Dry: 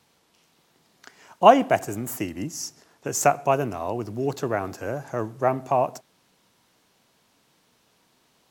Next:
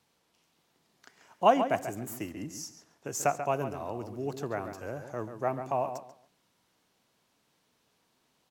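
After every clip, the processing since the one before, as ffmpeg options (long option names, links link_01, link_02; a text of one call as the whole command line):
ffmpeg -i in.wav -filter_complex "[0:a]asplit=2[link_01][link_02];[link_02]adelay=138,lowpass=frequency=3600:poles=1,volume=-9dB,asplit=2[link_03][link_04];[link_04]adelay=138,lowpass=frequency=3600:poles=1,volume=0.23,asplit=2[link_05][link_06];[link_06]adelay=138,lowpass=frequency=3600:poles=1,volume=0.23[link_07];[link_01][link_03][link_05][link_07]amix=inputs=4:normalize=0,volume=-8.5dB" out.wav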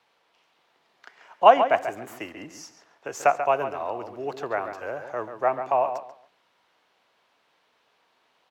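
ffmpeg -i in.wav -filter_complex "[0:a]acrossover=split=440 3900:gain=0.141 1 0.141[link_01][link_02][link_03];[link_01][link_02][link_03]amix=inputs=3:normalize=0,volume=9dB" out.wav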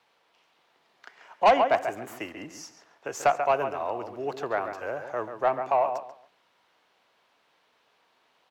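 ffmpeg -i in.wav -af "asoftclip=type=tanh:threshold=-12.5dB" out.wav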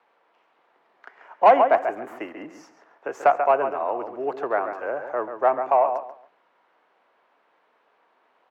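ffmpeg -i in.wav -filter_complex "[0:a]acrossover=split=220 2100:gain=0.126 1 0.126[link_01][link_02][link_03];[link_01][link_02][link_03]amix=inputs=3:normalize=0,volume=5dB" out.wav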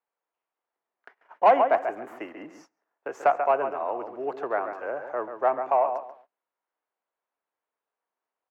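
ffmpeg -i in.wav -af "agate=range=-22dB:threshold=-47dB:ratio=16:detection=peak,volume=-3.5dB" out.wav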